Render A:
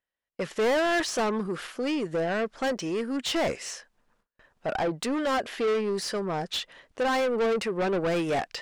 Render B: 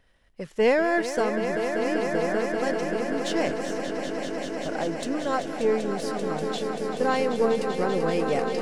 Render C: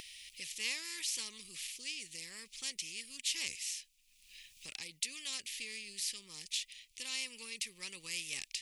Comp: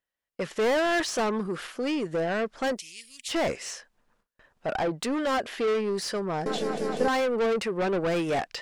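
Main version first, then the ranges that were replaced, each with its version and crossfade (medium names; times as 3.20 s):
A
2.77–3.30 s: from C, crossfade 0.06 s
6.46–7.08 s: from B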